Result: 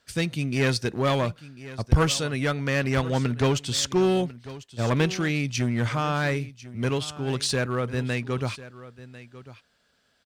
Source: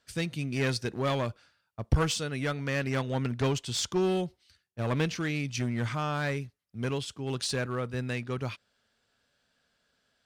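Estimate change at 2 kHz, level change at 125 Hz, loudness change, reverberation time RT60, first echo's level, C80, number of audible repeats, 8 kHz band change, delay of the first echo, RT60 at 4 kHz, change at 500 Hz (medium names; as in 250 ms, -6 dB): +5.5 dB, +5.5 dB, +5.5 dB, no reverb, -17.0 dB, no reverb, 1, +5.5 dB, 1047 ms, no reverb, +5.5 dB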